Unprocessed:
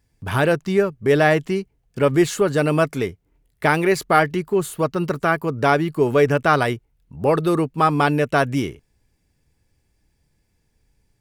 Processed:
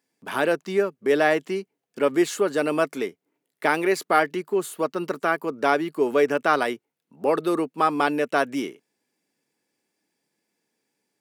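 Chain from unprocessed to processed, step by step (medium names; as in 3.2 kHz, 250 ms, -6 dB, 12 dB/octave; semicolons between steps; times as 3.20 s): high-pass 230 Hz 24 dB/octave; trim -3.5 dB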